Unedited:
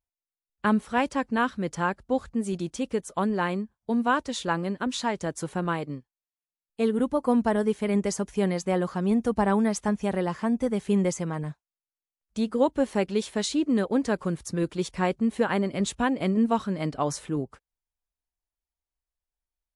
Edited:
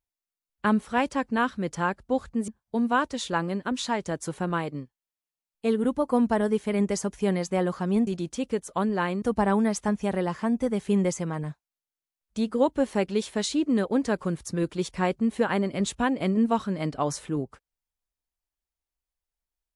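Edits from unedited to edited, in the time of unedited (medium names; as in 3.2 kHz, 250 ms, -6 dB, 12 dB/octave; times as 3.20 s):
2.48–3.63 s: move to 9.22 s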